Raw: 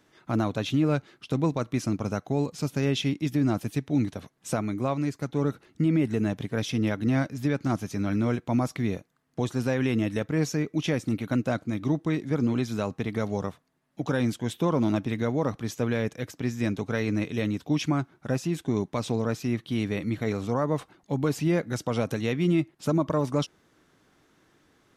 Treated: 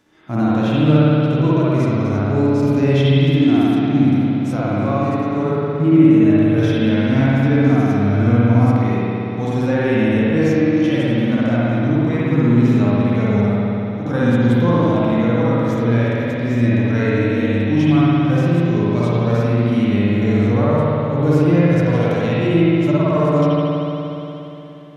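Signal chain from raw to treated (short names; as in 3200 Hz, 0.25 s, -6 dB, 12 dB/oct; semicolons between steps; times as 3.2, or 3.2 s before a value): spring tank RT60 3.4 s, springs 59 ms, chirp 60 ms, DRR -8 dB; harmonic-percussive split percussive -13 dB; gain +5 dB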